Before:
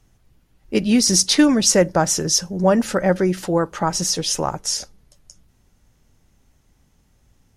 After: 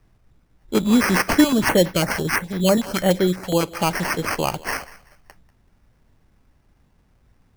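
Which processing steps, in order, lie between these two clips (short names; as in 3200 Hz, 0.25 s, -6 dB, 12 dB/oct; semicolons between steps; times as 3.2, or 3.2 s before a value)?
high shelf 5700 Hz -5.5 dB; sample-and-hold 12×; thinning echo 0.191 s, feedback 28%, level -19 dB; 1.44–3.63 stepped notch 12 Hz 330–8000 Hz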